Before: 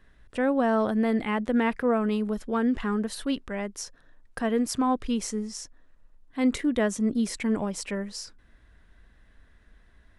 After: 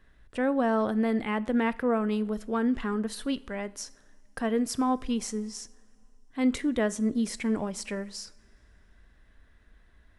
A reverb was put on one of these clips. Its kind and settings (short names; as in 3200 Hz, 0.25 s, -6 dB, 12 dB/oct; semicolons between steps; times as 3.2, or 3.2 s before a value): two-slope reverb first 0.5 s, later 2.7 s, from -18 dB, DRR 16.5 dB; gain -2 dB